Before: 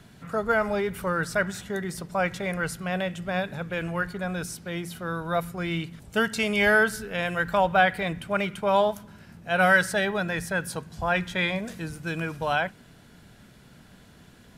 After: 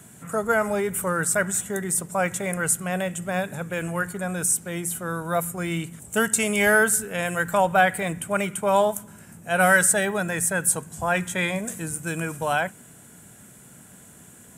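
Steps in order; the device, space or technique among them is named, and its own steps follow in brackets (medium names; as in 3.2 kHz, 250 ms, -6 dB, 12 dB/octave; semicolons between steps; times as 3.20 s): budget condenser microphone (high-pass 90 Hz; resonant high shelf 6.1 kHz +10.5 dB, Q 3); trim +2 dB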